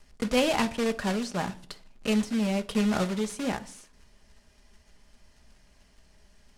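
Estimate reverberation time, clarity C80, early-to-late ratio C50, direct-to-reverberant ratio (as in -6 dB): 0.50 s, 24.0 dB, 17.5 dB, 8.0 dB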